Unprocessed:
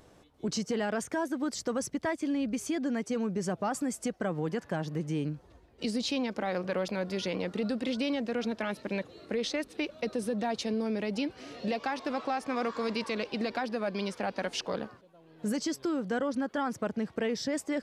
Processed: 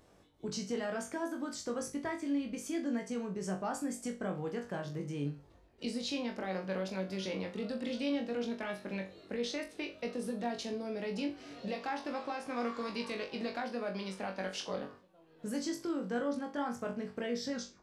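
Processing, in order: tape stop at the end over 0.32 s; flutter echo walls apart 3.6 m, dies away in 0.29 s; gain -7 dB

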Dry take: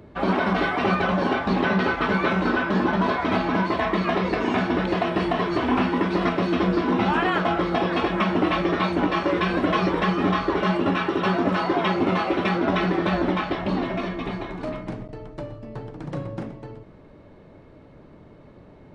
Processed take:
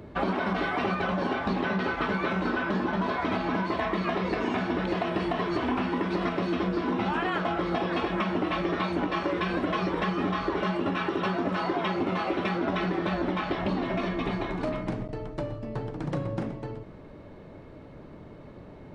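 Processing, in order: compressor, threshold -27 dBFS, peak gain reduction 10 dB; gain +2 dB

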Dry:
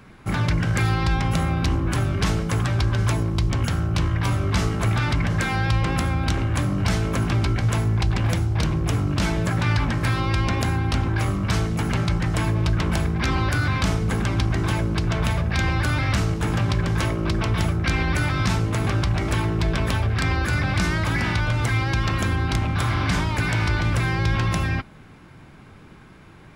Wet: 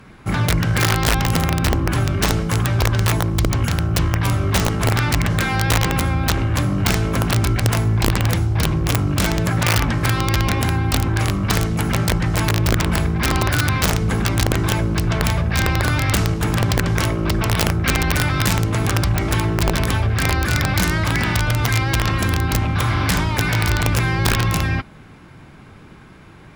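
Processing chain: added harmonics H 2 -40 dB, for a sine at -9.5 dBFS; wrapped overs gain 13 dB; gain +3.5 dB

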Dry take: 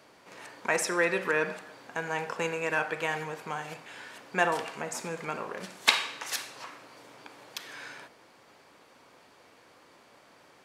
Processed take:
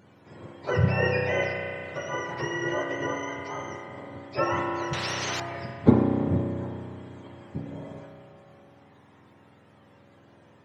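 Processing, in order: spectrum mirrored in octaves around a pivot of 970 Hz; spring tank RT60 2.7 s, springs 32 ms, chirp 35 ms, DRR 0.5 dB; 4.93–5.4 spectral compressor 4:1

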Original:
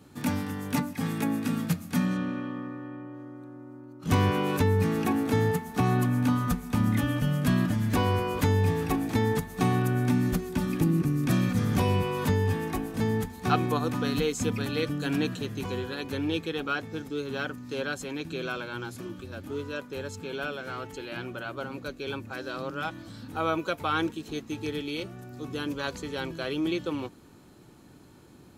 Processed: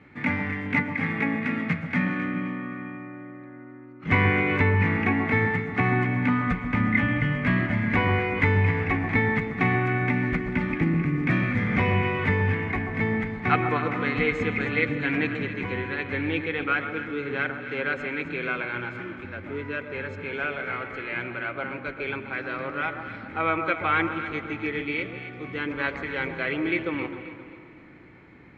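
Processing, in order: synth low-pass 2100 Hz, resonance Q 10; echo with dull and thin repeats by turns 0.132 s, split 1200 Hz, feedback 61%, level -7 dB; on a send at -12.5 dB: reverb RT60 2.7 s, pre-delay 80 ms

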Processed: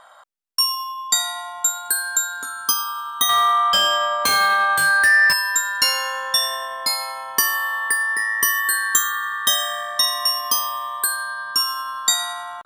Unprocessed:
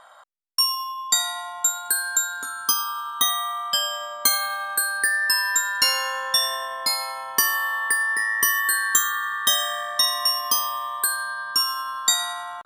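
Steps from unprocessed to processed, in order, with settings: 3.29–5.33 overdrive pedal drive 19 dB, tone 2200 Hz, clips at -5 dBFS; gain +1.5 dB

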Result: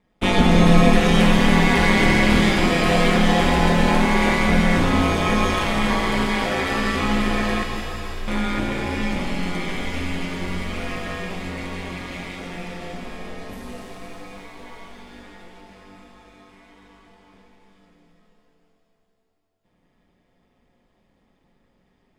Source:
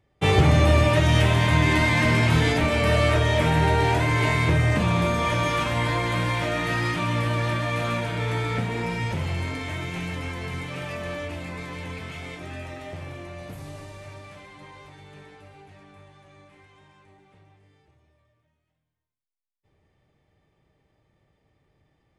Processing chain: ring modulator 94 Hz; 7.63–8.28 inverse Chebyshev band-stop 360–3400 Hz, stop band 70 dB; shimmer reverb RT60 3.4 s, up +7 st, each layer -8 dB, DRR 2.5 dB; gain +4 dB

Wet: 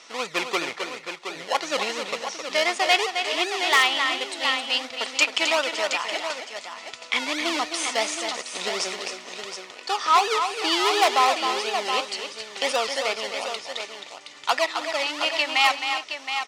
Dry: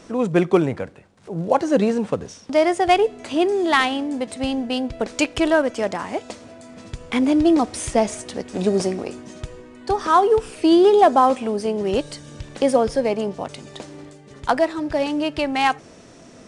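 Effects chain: in parallel at -8 dB: decimation with a swept rate 29×, swing 60% 2.8 Hz; on the sum: soft clip -3.5 dBFS, distortion -23 dB; LPF 5200 Hz 12 dB/oct; high shelf 2200 Hz +11.5 dB; on a send: tapped delay 0.264/0.322/0.72 s -7.5/-20/-8.5 dB; on the sum: wavefolder -4 dBFS; HPF 1200 Hz 12 dB/oct; tilt -1.5 dB/oct; notch 1600 Hz, Q 6.5; gain +1.5 dB

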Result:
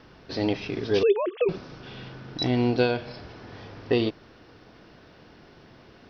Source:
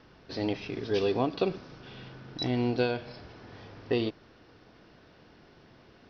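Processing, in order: 1.03–1.49 sine-wave speech; gain +5 dB

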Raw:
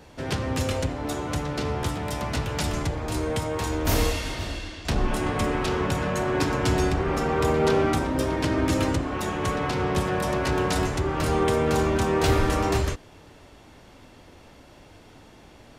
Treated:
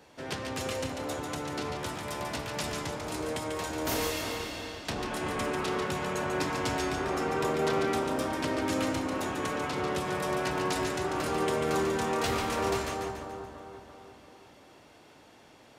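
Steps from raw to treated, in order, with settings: HPF 290 Hz 6 dB/oct; on a send: split-band echo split 1400 Hz, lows 0.339 s, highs 0.143 s, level -5.5 dB; on the sum: gain -5 dB

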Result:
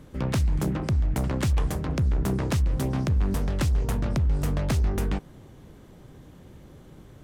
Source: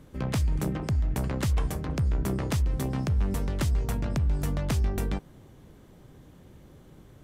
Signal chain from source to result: soft clip -18 dBFS, distortion -24 dB; Doppler distortion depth 0.42 ms; gain +3.5 dB

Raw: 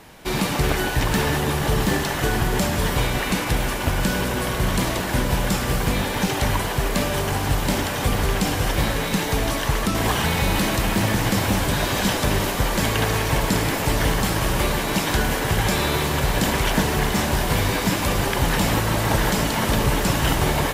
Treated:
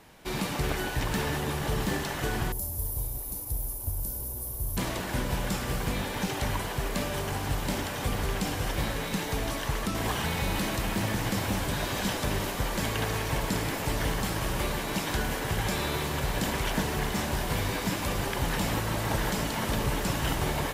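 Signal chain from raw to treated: 2.52–4.77 EQ curve 100 Hz 0 dB, 170 Hz -18 dB, 290 Hz -12 dB, 930 Hz -15 dB, 1600 Hz -29 dB, 2900 Hz -26 dB, 5400 Hz -10 dB, 8100 Hz -6 dB, 11000 Hz +11 dB; gain -8.5 dB

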